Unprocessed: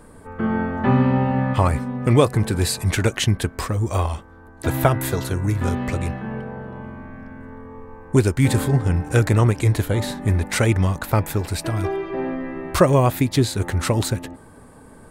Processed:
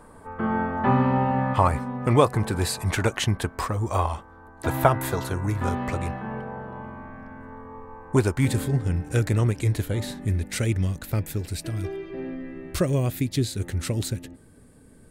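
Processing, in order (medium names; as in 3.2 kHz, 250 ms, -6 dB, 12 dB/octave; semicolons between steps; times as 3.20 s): peaking EQ 950 Hz +7.5 dB 1.3 oct, from 8.45 s -6.5 dB, from 10.25 s -14 dB; trim -5 dB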